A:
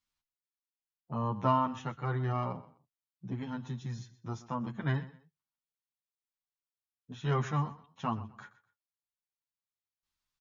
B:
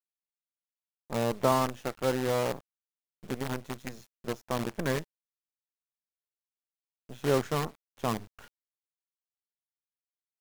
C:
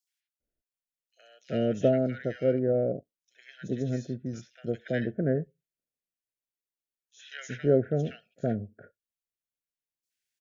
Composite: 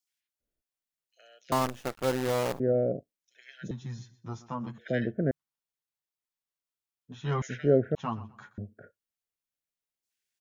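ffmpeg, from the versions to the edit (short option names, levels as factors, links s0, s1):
-filter_complex "[0:a]asplit=3[s0][s1][s2];[2:a]asplit=5[s3][s4][s5][s6][s7];[s3]atrim=end=1.522[s8];[1:a]atrim=start=1.518:end=2.602[s9];[s4]atrim=start=2.598:end=3.712[s10];[s0]atrim=start=3.708:end=4.782[s11];[s5]atrim=start=4.778:end=5.312[s12];[s1]atrim=start=5.308:end=7.422[s13];[s6]atrim=start=7.418:end=7.952[s14];[s2]atrim=start=7.948:end=8.582[s15];[s7]atrim=start=8.578[s16];[s8][s9]acrossfade=d=0.004:c1=hsin:c2=hsin[s17];[s17][s10]acrossfade=d=0.004:c1=hsin:c2=hsin[s18];[s18][s11]acrossfade=d=0.004:c1=hsin:c2=hsin[s19];[s19][s12]acrossfade=d=0.004:c1=hsin:c2=hsin[s20];[s20][s13]acrossfade=d=0.004:c1=hsin:c2=hsin[s21];[s21][s14]acrossfade=d=0.004:c1=hsin:c2=hsin[s22];[s22][s15]acrossfade=d=0.004:c1=hsin:c2=hsin[s23];[s23][s16]acrossfade=d=0.004:c1=hsin:c2=hsin"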